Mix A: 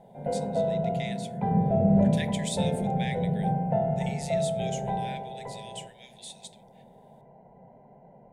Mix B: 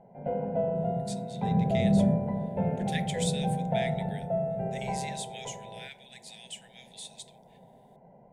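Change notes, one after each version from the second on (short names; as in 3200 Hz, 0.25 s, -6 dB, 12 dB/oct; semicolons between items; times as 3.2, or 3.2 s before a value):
speech: entry +0.75 s; background: send off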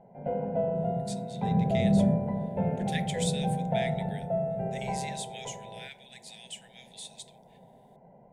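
none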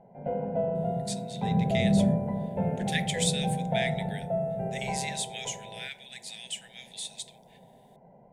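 speech +6.0 dB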